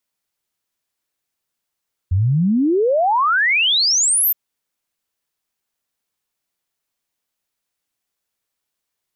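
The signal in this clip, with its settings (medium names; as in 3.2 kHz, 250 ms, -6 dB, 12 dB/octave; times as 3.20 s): log sweep 85 Hz -> 14 kHz 2.22 s -13 dBFS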